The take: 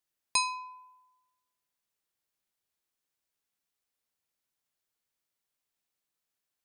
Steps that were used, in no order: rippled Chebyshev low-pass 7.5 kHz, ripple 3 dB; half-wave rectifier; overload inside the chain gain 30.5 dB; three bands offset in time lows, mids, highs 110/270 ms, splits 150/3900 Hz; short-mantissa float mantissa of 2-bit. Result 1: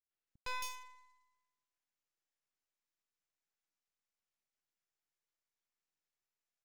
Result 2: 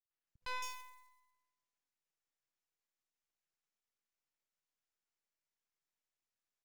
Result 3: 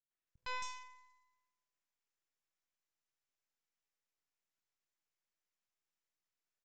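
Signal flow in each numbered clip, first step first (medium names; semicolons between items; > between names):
short-mantissa float > rippled Chebyshev low-pass > overload inside the chain > three bands offset in time > half-wave rectifier; overload inside the chain > rippled Chebyshev low-pass > short-mantissa float > three bands offset in time > half-wave rectifier; overload inside the chain > short-mantissa float > three bands offset in time > half-wave rectifier > rippled Chebyshev low-pass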